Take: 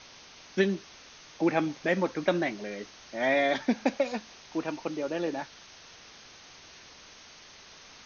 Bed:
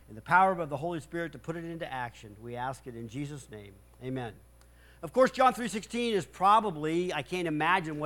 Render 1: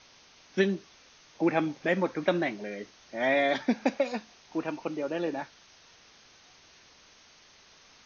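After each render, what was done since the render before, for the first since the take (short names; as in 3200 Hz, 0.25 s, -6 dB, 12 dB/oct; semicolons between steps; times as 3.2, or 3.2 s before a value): noise print and reduce 6 dB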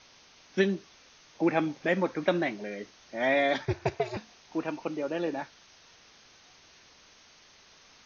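3.65–4.17 ring modulator 130 Hz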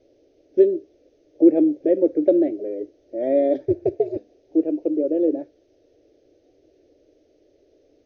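EQ curve 110 Hz 0 dB, 200 Hz -14 dB, 300 Hz +14 dB, 590 Hz +9 dB, 1000 Hz -29 dB, 1800 Hz -20 dB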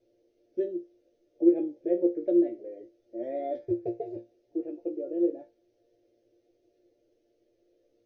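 resonator bank A#2 fifth, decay 0.21 s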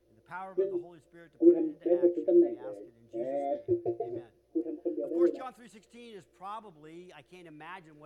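add bed -19 dB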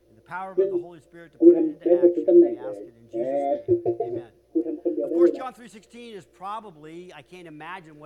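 gain +8 dB; limiter -3 dBFS, peak gain reduction 1 dB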